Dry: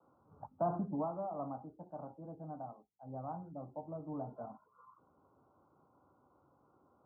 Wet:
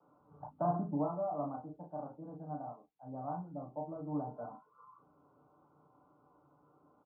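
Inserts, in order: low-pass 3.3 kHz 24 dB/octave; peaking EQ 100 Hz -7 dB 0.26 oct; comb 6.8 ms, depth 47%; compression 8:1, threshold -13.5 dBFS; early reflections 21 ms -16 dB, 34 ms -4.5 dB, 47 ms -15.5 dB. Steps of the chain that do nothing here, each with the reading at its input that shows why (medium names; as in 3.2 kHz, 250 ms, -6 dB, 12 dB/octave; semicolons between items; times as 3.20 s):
low-pass 3.3 kHz: input has nothing above 1.4 kHz; compression, threshold -13.5 dBFS: peak at its input -23.5 dBFS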